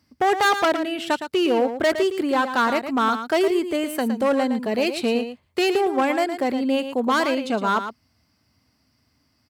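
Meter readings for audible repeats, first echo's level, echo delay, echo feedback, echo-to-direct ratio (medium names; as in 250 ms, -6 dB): 1, -9.5 dB, 113 ms, no regular repeats, -9.5 dB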